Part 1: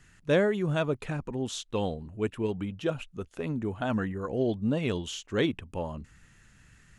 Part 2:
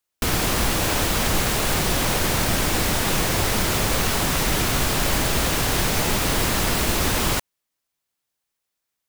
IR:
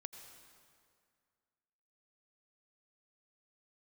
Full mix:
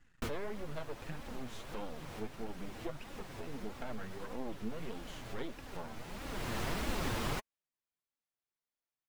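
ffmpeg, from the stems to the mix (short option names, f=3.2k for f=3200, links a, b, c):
-filter_complex "[0:a]acompressor=threshold=-28dB:ratio=3,aeval=exprs='max(val(0),0)':c=same,volume=-2.5dB,asplit=2[a][b];[1:a]volume=-8.5dB[c];[b]apad=whole_len=400726[d];[c][d]sidechaincompress=threshold=-54dB:ratio=3:attack=6.2:release=531[e];[a][e]amix=inputs=2:normalize=0,highshelf=f=4.4k:g=-11.5,flanger=delay=3.5:depth=5.6:regen=30:speed=1.6:shape=sinusoidal"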